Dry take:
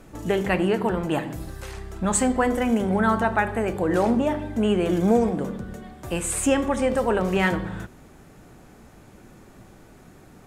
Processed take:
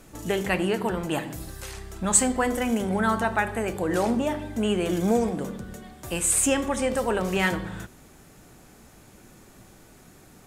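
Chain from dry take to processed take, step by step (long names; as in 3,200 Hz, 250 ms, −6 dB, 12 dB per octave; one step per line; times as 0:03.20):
high-shelf EQ 3,100 Hz +10 dB
level −3.5 dB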